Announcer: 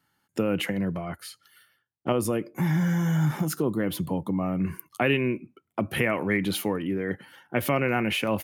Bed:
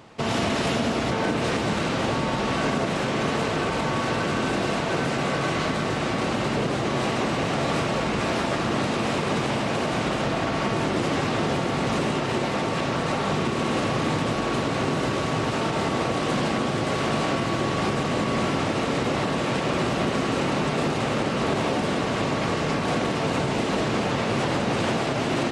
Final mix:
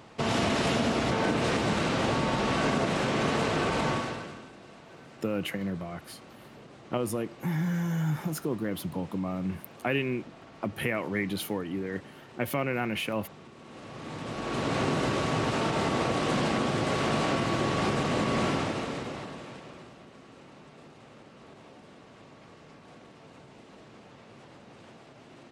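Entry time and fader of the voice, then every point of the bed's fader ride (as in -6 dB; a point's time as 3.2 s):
4.85 s, -5.0 dB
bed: 3.91 s -2.5 dB
4.52 s -25 dB
13.61 s -25 dB
14.72 s -3 dB
18.5 s -3 dB
20.03 s -27 dB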